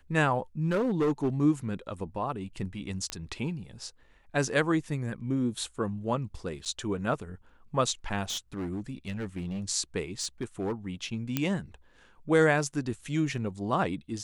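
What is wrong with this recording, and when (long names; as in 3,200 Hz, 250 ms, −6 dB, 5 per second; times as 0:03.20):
0:00.65–0:01.29: clipping −22 dBFS
0:03.10: click −17 dBFS
0:06.65–0:06.66: drop-out 7.9 ms
0:08.29–0:09.64: clipping −30 dBFS
0:10.20–0:10.73: clipping −26 dBFS
0:11.37: click −12 dBFS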